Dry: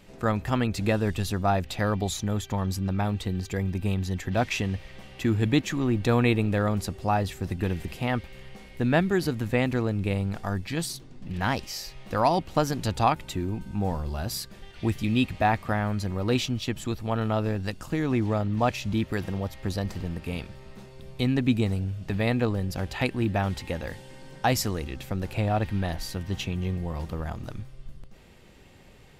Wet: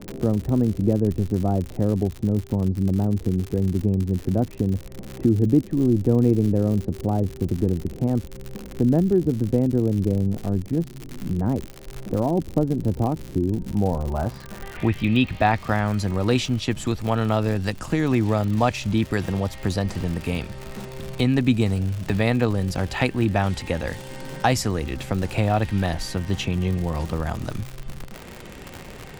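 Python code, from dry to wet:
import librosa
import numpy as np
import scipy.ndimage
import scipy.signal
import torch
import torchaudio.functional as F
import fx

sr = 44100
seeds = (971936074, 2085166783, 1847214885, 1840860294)

y = fx.filter_sweep_lowpass(x, sr, from_hz=380.0, to_hz=9400.0, start_s=13.49, end_s=15.98, q=1.3)
y = fx.dmg_crackle(y, sr, seeds[0], per_s=110.0, level_db=-34.0)
y = fx.band_squash(y, sr, depth_pct=40)
y = y * 10.0 ** (4.5 / 20.0)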